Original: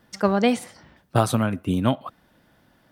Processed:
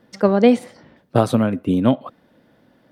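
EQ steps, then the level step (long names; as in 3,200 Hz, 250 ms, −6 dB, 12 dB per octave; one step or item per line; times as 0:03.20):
octave-band graphic EQ 125/250/500/1,000/2,000/4,000 Hz +6/+10/+12/+3/+5/+5 dB
−6.5 dB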